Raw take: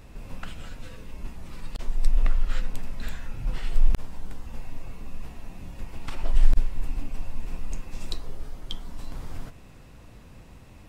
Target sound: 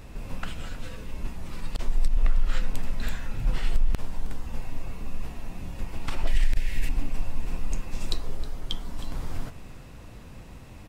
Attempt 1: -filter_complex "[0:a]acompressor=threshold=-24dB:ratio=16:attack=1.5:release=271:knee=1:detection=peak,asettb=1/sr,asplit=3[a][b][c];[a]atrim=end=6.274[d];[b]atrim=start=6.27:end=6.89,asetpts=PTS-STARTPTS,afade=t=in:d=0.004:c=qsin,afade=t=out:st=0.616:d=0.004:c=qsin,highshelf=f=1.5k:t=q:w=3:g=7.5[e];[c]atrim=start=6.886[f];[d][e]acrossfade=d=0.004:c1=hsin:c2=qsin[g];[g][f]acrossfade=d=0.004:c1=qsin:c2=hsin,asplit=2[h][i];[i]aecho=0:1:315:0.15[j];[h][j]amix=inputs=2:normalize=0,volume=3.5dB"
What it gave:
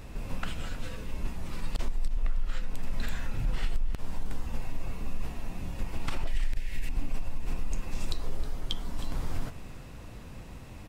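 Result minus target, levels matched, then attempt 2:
compressor: peak gain reduction +7 dB
-filter_complex "[0:a]acompressor=threshold=-16.5dB:ratio=16:attack=1.5:release=271:knee=1:detection=peak,asettb=1/sr,asplit=3[a][b][c];[a]atrim=end=6.274[d];[b]atrim=start=6.27:end=6.89,asetpts=PTS-STARTPTS,afade=t=in:d=0.004:c=qsin,afade=t=out:st=0.616:d=0.004:c=qsin,highshelf=f=1.5k:t=q:w=3:g=7.5[e];[c]atrim=start=6.886[f];[d][e]acrossfade=d=0.004:c1=hsin:c2=qsin[g];[g][f]acrossfade=d=0.004:c1=qsin:c2=hsin,asplit=2[h][i];[i]aecho=0:1:315:0.15[j];[h][j]amix=inputs=2:normalize=0,volume=3.5dB"

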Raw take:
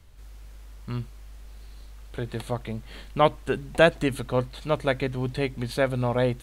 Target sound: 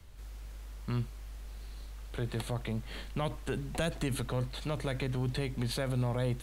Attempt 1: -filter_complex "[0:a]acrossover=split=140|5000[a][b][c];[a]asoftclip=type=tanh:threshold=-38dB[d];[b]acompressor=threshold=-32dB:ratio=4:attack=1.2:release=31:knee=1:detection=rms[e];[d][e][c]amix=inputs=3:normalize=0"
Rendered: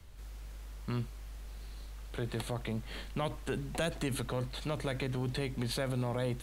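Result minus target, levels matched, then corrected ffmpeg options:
soft clip: distortion +13 dB
-filter_complex "[0:a]acrossover=split=140|5000[a][b][c];[a]asoftclip=type=tanh:threshold=-27.5dB[d];[b]acompressor=threshold=-32dB:ratio=4:attack=1.2:release=31:knee=1:detection=rms[e];[d][e][c]amix=inputs=3:normalize=0"

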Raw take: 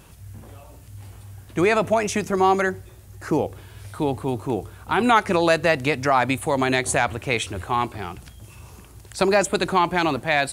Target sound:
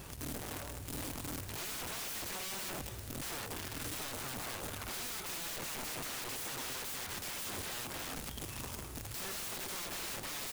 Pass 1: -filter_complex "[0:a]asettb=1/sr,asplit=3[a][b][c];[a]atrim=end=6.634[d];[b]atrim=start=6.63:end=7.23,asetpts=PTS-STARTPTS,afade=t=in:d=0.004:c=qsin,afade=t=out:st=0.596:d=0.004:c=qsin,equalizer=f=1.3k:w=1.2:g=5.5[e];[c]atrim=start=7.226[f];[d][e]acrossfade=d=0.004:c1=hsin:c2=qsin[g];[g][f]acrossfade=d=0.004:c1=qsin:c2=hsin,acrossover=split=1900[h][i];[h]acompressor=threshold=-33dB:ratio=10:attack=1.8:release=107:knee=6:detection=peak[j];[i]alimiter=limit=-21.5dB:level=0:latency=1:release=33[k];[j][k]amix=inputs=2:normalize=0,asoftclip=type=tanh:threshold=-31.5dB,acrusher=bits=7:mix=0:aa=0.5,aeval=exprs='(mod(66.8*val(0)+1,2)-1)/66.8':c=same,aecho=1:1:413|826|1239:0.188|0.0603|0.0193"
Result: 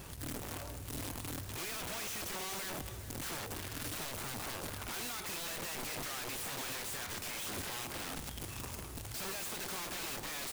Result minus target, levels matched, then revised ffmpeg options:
soft clip: distortion +8 dB
-filter_complex "[0:a]asettb=1/sr,asplit=3[a][b][c];[a]atrim=end=6.634[d];[b]atrim=start=6.63:end=7.23,asetpts=PTS-STARTPTS,afade=t=in:d=0.004:c=qsin,afade=t=out:st=0.596:d=0.004:c=qsin,equalizer=f=1.3k:w=1.2:g=5.5[e];[c]atrim=start=7.226[f];[d][e]acrossfade=d=0.004:c1=hsin:c2=qsin[g];[g][f]acrossfade=d=0.004:c1=qsin:c2=hsin,acrossover=split=1900[h][i];[h]acompressor=threshold=-33dB:ratio=10:attack=1.8:release=107:knee=6:detection=peak[j];[i]alimiter=limit=-21.5dB:level=0:latency=1:release=33[k];[j][k]amix=inputs=2:normalize=0,asoftclip=type=tanh:threshold=-23.5dB,acrusher=bits=7:mix=0:aa=0.5,aeval=exprs='(mod(66.8*val(0)+1,2)-1)/66.8':c=same,aecho=1:1:413|826|1239:0.188|0.0603|0.0193"

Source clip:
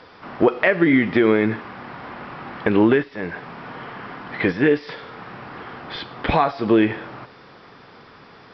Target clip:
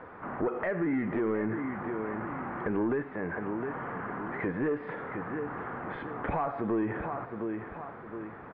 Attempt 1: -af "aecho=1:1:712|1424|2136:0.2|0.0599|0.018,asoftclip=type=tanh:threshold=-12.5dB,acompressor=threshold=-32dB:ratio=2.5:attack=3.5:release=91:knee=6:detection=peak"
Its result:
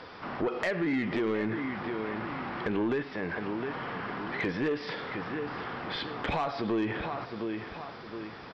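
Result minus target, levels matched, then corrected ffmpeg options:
2000 Hz band +2.5 dB
-af "aecho=1:1:712|1424|2136:0.2|0.0599|0.018,asoftclip=type=tanh:threshold=-12.5dB,acompressor=threshold=-32dB:ratio=2.5:attack=3.5:release=91:knee=6:detection=peak,lowpass=f=1.8k:w=0.5412,lowpass=f=1.8k:w=1.3066"

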